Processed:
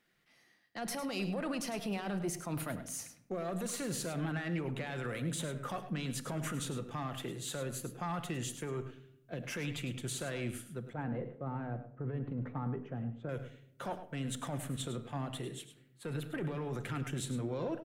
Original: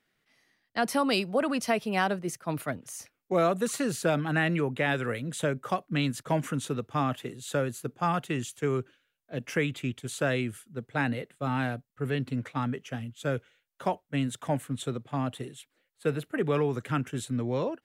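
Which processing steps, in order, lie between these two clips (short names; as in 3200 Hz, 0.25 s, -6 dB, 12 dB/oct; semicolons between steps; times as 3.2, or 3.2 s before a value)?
one diode to ground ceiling -23.5 dBFS; 10.93–13.29 LPF 1000 Hz 12 dB/oct; limiter -30 dBFS, peak gain reduction 17 dB; echo 0.104 s -11.5 dB; shoebox room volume 2200 m³, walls furnished, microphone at 0.86 m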